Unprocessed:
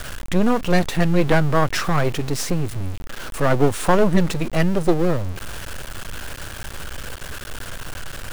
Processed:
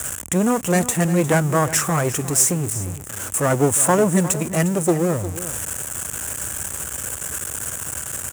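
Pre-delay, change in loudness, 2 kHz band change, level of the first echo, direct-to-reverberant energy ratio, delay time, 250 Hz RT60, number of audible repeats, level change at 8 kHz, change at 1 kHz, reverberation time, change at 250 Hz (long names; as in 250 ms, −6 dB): no reverb audible, +0.5 dB, −1.0 dB, −14.0 dB, no reverb audible, 355 ms, no reverb audible, 1, +14.5 dB, 0.0 dB, no reverb audible, 0.0 dB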